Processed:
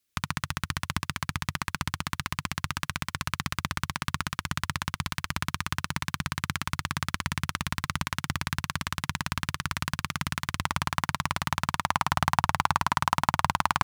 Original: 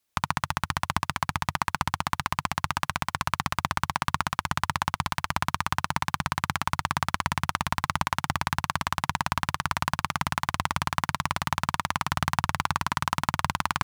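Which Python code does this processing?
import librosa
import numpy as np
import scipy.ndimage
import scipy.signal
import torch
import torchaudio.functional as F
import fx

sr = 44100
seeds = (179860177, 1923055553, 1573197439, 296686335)

y = fx.peak_eq(x, sr, hz=820.0, db=fx.steps((0.0, -12.5), (10.63, -3.0), (11.84, 4.0)), octaves=1.0)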